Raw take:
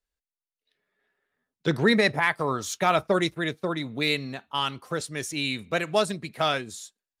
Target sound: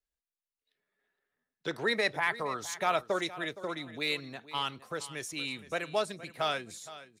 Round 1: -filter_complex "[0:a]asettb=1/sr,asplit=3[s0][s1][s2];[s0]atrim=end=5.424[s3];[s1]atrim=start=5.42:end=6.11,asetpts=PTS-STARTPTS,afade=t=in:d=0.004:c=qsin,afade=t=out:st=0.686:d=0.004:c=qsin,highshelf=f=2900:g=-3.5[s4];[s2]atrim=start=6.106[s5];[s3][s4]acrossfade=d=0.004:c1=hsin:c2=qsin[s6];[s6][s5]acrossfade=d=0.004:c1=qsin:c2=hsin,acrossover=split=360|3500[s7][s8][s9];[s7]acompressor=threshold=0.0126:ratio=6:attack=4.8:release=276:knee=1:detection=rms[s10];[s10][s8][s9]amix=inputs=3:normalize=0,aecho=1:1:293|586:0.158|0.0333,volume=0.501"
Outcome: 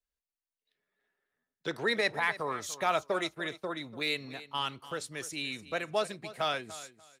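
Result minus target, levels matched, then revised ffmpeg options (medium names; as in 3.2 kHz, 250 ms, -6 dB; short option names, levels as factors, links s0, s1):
echo 174 ms early
-filter_complex "[0:a]asettb=1/sr,asplit=3[s0][s1][s2];[s0]atrim=end=5.424[s3];[s1]atrim=start=5.42:end=6.11,asetpts=PTS-STARTPTS,afade=t=in:d=0.004:c=qsin,afade=t=out:st=0.686:d=0.004:c=qsin,highshelf=f=2900:g=-3.5[s4];[s2]atrim=start=6.106[s5];[s3][s4]acrossfade=d=0.004:c1=hsin:c2=qsin[s6];[s6][s5]acrossfade=d=0.004:c1=qsin:c2=hsin,acrossover=split=360|3500[s7][s8][s9];[s7]acompressor=threshold=0.0126:ratio=6:attack=4.8:release=276:knee=1:detection=rms[s10];[s10][s8][s9]amix=inputs=3:normalize=0,aecho=1:1:467|934:0.158|0.0333,volume=0.501"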